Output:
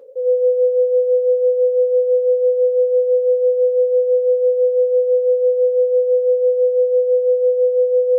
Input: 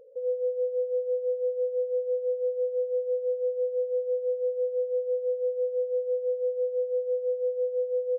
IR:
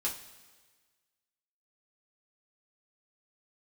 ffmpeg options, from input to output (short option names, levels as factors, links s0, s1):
-filter_complex "[0:a]highpass=350,asplit=2[s0][s1];[1:a]atrim=start_sample=2205,lowshelf=f=400:g=8.5[s2];[s1][s2]afir=irnorm=-1:irlink=0,volume=0.708[s3];[s0][s3]amix=inputs=2:normalize=0,volume=2"